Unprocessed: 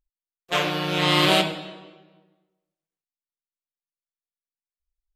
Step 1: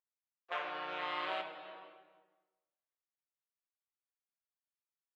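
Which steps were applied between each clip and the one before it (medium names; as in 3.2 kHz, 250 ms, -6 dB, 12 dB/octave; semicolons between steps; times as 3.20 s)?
high-pass 840 Hz 12 dB/octave; compression 2:1, threshold -39 dBFS, peak gain reduction 12 dB; low-pass 1.6 kHz 12 dB/octave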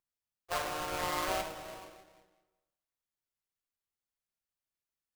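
square wave that keeps the level; bass shelf 140 Hz +11.5 dB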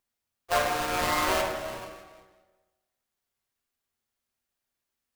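reverberation RT60 1.1 s, pre-delay 4 ms, DRR 2.5 dB; trim +7 dB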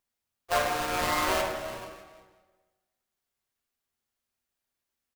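echo from a far wall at 91 m, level -29 dB; trim -1 dB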